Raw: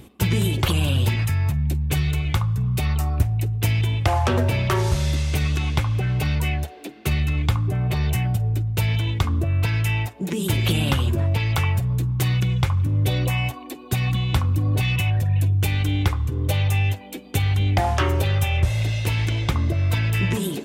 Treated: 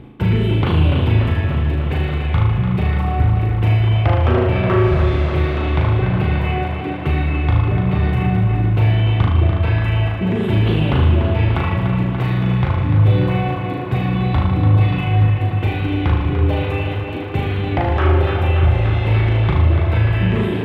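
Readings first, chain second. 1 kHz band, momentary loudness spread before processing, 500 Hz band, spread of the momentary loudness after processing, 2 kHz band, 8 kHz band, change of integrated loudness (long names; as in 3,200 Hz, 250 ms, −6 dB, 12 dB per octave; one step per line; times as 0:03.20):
+6.0 dB, 3 LU, +8.0 dB, 5 LU, +2.5 dB, below −20 dB, +5.0 dB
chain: mains-hum notches 50/100 Hz
flutter between parallel walls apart 6.5 metres, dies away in 0.86 s
in parallel at 0 dB: brickwall limiter −17 dBFS, peak gain reduction 10.5 dB
on the sum: high-frequency loss of the air 500 metres
on a send: tape delay 292 ms, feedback 85%, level −6 dB, low-pass 5,600 Hz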